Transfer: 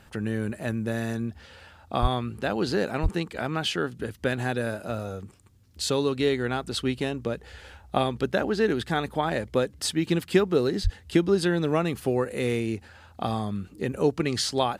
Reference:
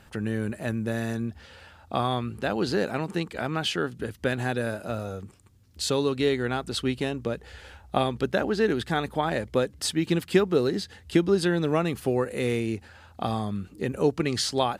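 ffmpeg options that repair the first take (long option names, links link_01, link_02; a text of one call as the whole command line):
ffmpeg -i in.wav -filter_complex "[0:a]asplit=3[link_01][link_02][link_03];[link_01]afade=type=out:start_time=2.01:duration=0.02[link_04];[link_02]highpass=frequency=140:width=0.5412,highpass=frequency=140:width=1.3066,afade=type=in:start_time=2.01:duration=0.02,afade=type=out:start_time=2.13:duration=0.02[link_05];[link_03]afade=type=in:start_time=2.13:duration=0.02[link_06];[link_04][link_05][link_06]amix=inputs=3:normalize=0,asplit=3[link_07][link_08][link_09];[link_07]afade=type=out:start_time=3.02:duration=0.02[link_10];[link_08]highpass=frequency=140:width=0.5412,highpass=frequency=140:width=1.3066,afade=type=in:start_time=3.02:duration=0.02,afade=type=out:start_time=3.14:duration=0.02[link_11];[link_09]afade=type=in:start_time=3.14:duration=0.02[link_12];[link_10][link_11][link_12]amix=inputs=3:normalize=0,asplit=3[link_13][link_14][link_15];[link_13]afade=type=out:start_time=10.83:duration=0.02[link_16];[link_14]highpass=frequency=140:width=0.5412,highpass=frequency=140:width=1.3066,afade=type=in:start_time=10.83:duration=0.02,afade=type=out:start_time=10.95:duration=0.02[link_17];[link_15]afade=type=in:start_time=10.95:duration=0.02[link_18];[link_16][link_17][link_18]amix=inputs=3:normalize=0" out.wav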